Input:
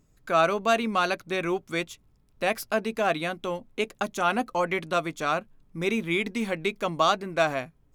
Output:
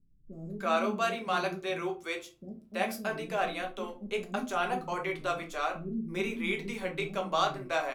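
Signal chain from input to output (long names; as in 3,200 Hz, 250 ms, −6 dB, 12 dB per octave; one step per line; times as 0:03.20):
0:00.58–0:03.09: high-pass filter 60 Hz
multiband delay without the direct sound lows, highs 330 ms, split 300 Hz
rectangular room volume 160 cubic metres, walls furnished, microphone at 1.2 metres
level −7.5 dB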